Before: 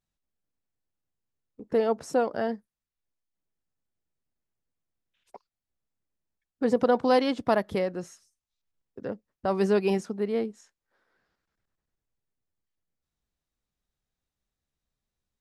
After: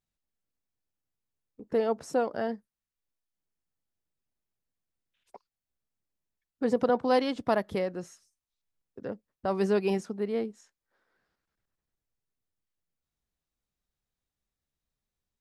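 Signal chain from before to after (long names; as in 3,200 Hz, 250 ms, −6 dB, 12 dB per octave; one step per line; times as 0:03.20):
0:06.89–0:07.36: multiband upward and downward expander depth 40%
level −2.5 dB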